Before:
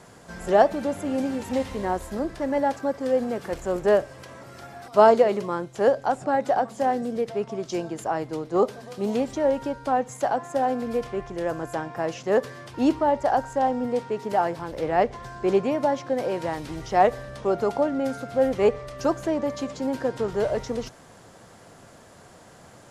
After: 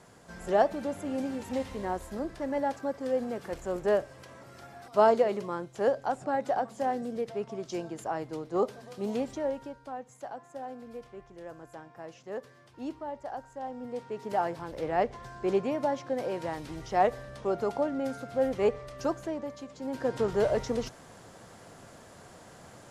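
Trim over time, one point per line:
9.29 s -6.5 dB
9.93 s -16.5 dB
13.57 s -16.5 dB
14.35 s -6 dB
19.02 s -6 dB
19.69 s -13.5 dB
20.15 s -1.5 dB

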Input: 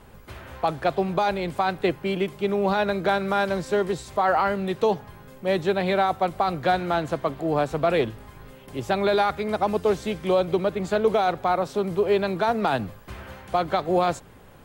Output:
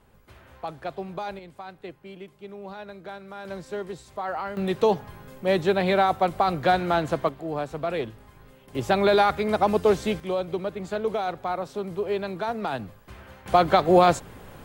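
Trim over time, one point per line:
-10 dB
from 1.39 s -16.5 dB
from 3.45 s -9.5 dB
from 4.57 s +1 dB
from 7.29 s -6.5 dB
from 8.75 s +2 dB
from 10.20 s -6 dB
from 13.46 s +5 dB

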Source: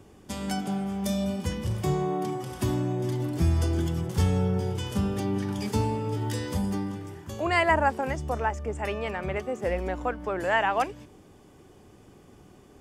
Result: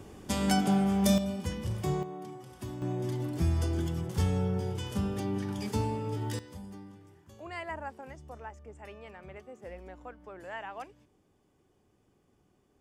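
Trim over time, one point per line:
+4 dB
from 1.18 s -4.5 dB
from 2.03 s -13 dB
from 2.82 s -4.5 dB
from 6.39 s -16.5 dB

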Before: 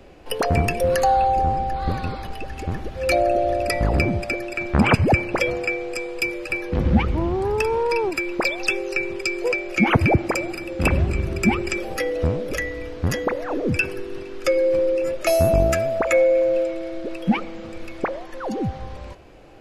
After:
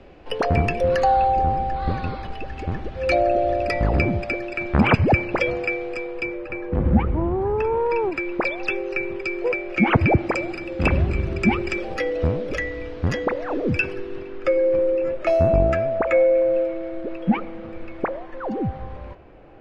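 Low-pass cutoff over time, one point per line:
5.77 s 3.8 kHz
6.47 s 1.5 kHz
7.54 s 1.5 kHz
8.19 s 2.5 kHz
9.66 s 2.5 kHz
10.37 s 4.1 kHz
13.87 s 4.1 kHz
14.46 s 2.1 kHz

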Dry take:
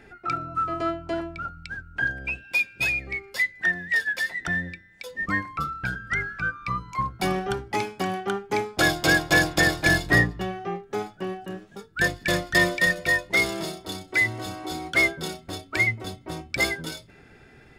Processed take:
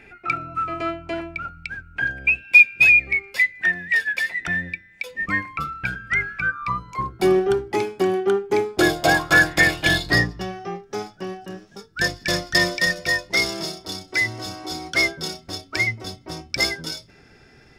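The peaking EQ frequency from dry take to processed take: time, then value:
peaking EQ +13.5 dB 0.4 oct
6.39 s 2.4 kHz
7.03 s 370 Hz
8.87 s 370 Hz
9.25 s 1.2 kHz
10.22 s 5.4 kHz

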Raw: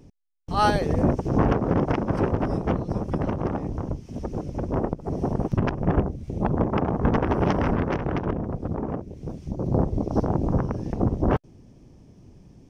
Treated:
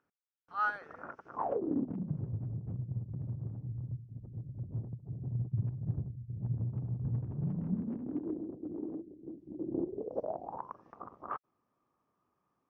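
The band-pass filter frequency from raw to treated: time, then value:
band-pass filter, Q 8.5
1.31 s 1.4 kHz
1.64 s 340 Hz
2.25 s 120 Hz
7.23 s 120 Hz
8.30 s 320 Hz
9.79 s 320 Hz
10.79 s 1.2 kHz

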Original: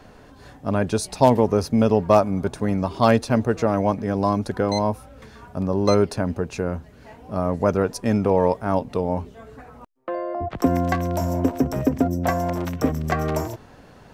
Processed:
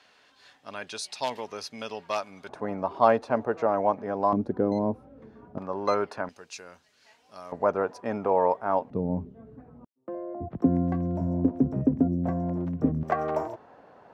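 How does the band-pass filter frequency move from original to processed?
band-pass filter, Q 1.1
3.4 kHz
from 2.49 s 830 Hz
from 4.33 s 300 Hz
from 5.58 s 1.2 kHz
from 6.29 s 5 kHz
from 7.52 s 910 Hz
from 8.90 s 190 Hz
from 13.03 s 750 Hz

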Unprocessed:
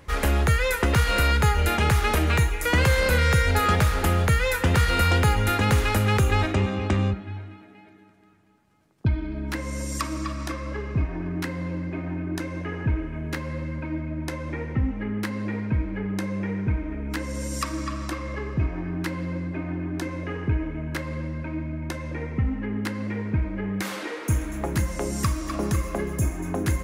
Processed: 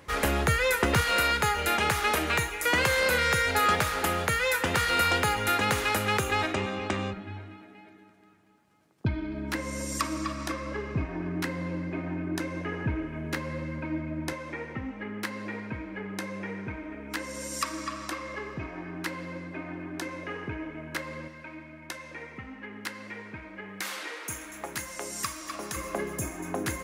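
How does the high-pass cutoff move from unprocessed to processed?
high-pass 6 dB/octave
180 Hz
from 1.01 s 480 Hz
from 7.17 s 180 Hz
from 14.33 s 580 Hz
from 21.28 s 1.4 kHz
from 25.76 s 430 Hz

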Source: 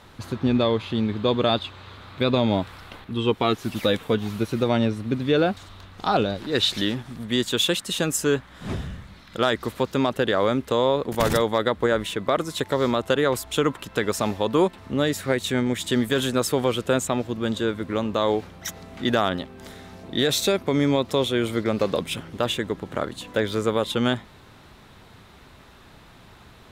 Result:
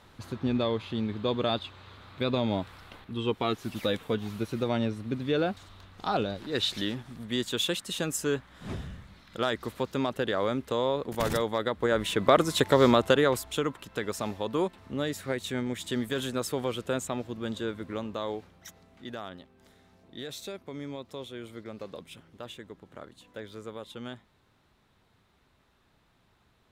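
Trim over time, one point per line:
11.77 s -7 dB
12.24 s +2 dB
12.94 s +2 dB
13.70 s -8.5 dB
17.87 s -8.5 dB
19.03 s -18 dB

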